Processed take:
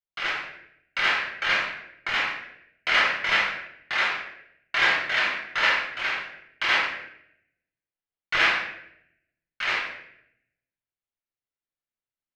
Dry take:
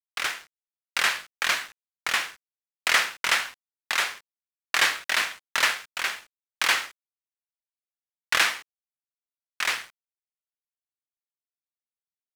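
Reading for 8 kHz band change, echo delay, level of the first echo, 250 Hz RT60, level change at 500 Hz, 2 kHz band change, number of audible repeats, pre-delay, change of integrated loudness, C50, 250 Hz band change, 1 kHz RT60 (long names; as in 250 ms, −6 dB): −14.5 dB, no echo audible, no echo audible, 0.95 s, +4.0 dB, +2.5 dB, no echo audible, 3 ms, +1.0 dB, 2.0 dB, +5.0 dB, 0.65 s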